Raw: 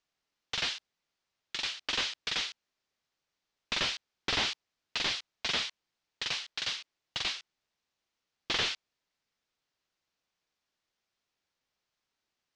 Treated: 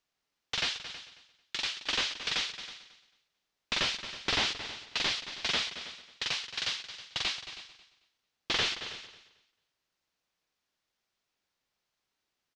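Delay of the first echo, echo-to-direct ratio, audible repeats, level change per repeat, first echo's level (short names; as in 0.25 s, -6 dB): 0.222 s, -11.0 dB, 4, no steady repeat, -13.0 dB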